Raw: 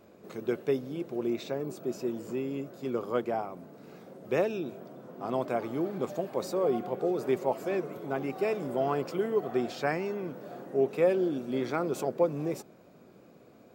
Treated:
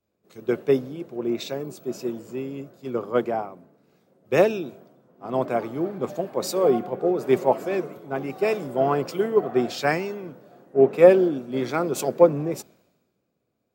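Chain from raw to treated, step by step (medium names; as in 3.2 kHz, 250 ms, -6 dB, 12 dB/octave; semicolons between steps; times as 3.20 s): three bands expanded up and down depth 100%; trim +6 dB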